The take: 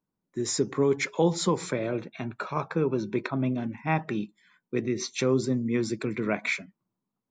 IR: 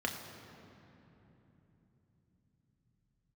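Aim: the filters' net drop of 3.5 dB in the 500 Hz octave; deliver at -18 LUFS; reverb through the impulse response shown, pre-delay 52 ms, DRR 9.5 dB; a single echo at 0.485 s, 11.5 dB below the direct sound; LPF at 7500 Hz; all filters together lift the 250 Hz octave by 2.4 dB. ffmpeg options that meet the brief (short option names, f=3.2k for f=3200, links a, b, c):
-filter_complex "[0:a]lowpass=7.5k,equalizer=f=250:t=o:g=5,equalizer=f=500:t=o:g=-7,aecho=1:1:485:0.266,asplit=2[a][b];[1:a]atrim=start_sample=2205,adelay=52[c];[b][c]afir=irnorm=-1:irlink=0,volume=-15dB[d];[a][d]amix=inputs=2:normalize=0,volume=9.5dB"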